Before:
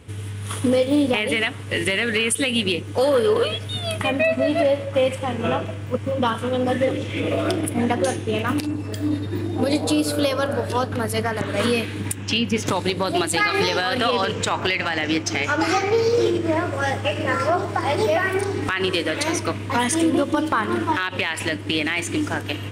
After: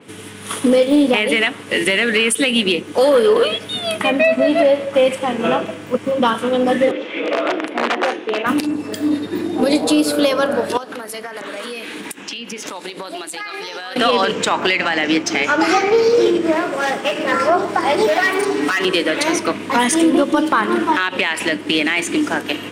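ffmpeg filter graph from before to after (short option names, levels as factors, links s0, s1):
-filter_complex "[0:a]asettb=1/sr,asplit=3[s0][s1][s2];[s0]atrim=end=6.914[s3];[s1]atrim=start=6.91:end=8.46,asetpts=PTS-STARTPTS,afade=t=in:d=0.004:c=qsin,afade=t=out:st=1.546:d=0.004:c=qsin,aeval=exprs='(mod(5.01*val(0)+1,2)-1)/5.01':c=same,highpass=390,lowpass=2900[s4];[s2]atrim=start=8.456[s5];[s3][s4]acrossfade=d=0.004:c1=hsin:c2=qsin[s6];[s6][s5]acrossfade=d=0.004:c1=qsin:c2=hsin,asettb=1/sr,asplit=3[s7][s8][s9];[s7]atrim=end=10.774[s10];[s8]atrim=start=10.77:end=13.96,asetpts=PTS-STARTPTS,afade=t=in:d=0.004:c=qsin,afade=t=out:st=3.186:d=0.004:c=qsin,highpass=f=510:p=1,acompressor=threshold=0.0316:ratio=16:attack=3.2:release=140:knee=1:detection=peak[s11];[s9]atrim=start=13.956[s12];[s10][s11]acrossfade=d=0.004:c1=hsin:c2=qsin[s13];[s13][s12]acrossfade=d=0.004:c1=qsin:c2=hsin,asettb=1/sr,asplit=3[s14][s15][s16];[s14]atrim=end=16.524[s17];[s15]atrim=start=16.52:end=17.32,asetpts=PTS-STARTPTS,afade=t=in:d=0.004:c=qsin,afade=t=out:st=0.796:d=0.004:c=qsin,bandreject=f=50:t=h:w=6,bandreject=f=100:t=h:w=6,bandreject=f=150:t=h:w=6,bandreject=f=200:t=h:w=6,bandreject=f=250:t=h:w=6,bandreject=f=300:t=h:w=6,bandreject=f=350:t=h:w=6,aeval=exprs='clip(val(0),-1,0.0596)':c=same[s18];[s16]atrim=start=17.316[s19];[s17][s18]acrossfade=d=0.004:c1=hsin:c2=qsin[s20];[s20][s19]acrossfade=d=0.004:c1=qsin:c2=hsin,asettb=1/sr,asplit=3[s21][s22][s23];[s21]atrim=end=18.074[s24];[s22]atrim=start=18.07:end=18.85,asetpts=PTS-STARTPTS,afade=t=in:d=0.004:c=qsin,afade=t=out:st=0.776:d=0.004:c=qsin,lowshelf=f=91:g=-12,volume=11.2,asoftclip=hard,volume=0.0891,aecho=1:1:6.9:0.95,atrim=end_sample=34398[s25];[s23]atrim=start=18.846[s26];[s24][s25]acrossfade=d=0.004:c1=hsin:c2=qsin[s27];[s27][s26]acrossfade=d=0.004:c1=qsin:c2=hsin,highpass=f=180:w=0.5412,highpass=f=180:w=1.3066,acontrast=53,adynamicequalizer=threshold=0.0316:dfrequency=4500:dqfactor=0.7:tfrequency=4500:tqfactor=0.7:attack=5:release=100:ratio=0.375:range=1.5:mode=cutabove:tftype=highshelf"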